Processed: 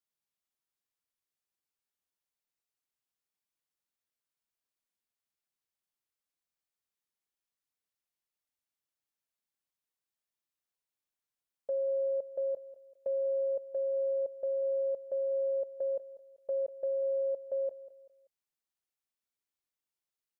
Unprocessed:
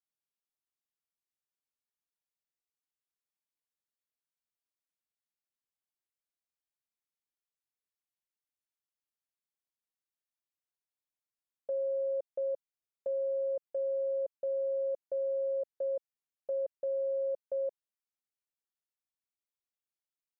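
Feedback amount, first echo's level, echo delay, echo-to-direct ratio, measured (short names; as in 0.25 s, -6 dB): 35%, -16.0 dB, 0.193 s, -15.5 dB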